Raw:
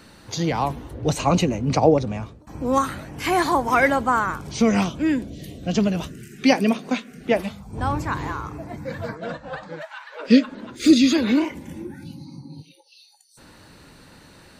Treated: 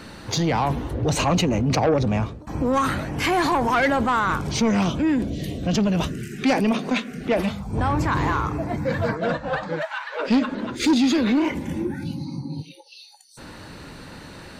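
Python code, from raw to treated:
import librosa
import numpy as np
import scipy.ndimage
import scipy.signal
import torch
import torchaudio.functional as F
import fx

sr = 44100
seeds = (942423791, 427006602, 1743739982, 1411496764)

p1 = fx.high_shelf(x, sr, hz=6400.0, db=-7.5)
p2 = fx.over_compress(p1, sr, threshold_db=-28.0, ratio=-1.0)
p3 = p1 + (p2 * 10.0 ** (-1.5 / 20.0))
y = 10.0 ** (-13.5 / 20.0) * np.tanh(p3 / 10.0 ** (-13.5 / 20.0))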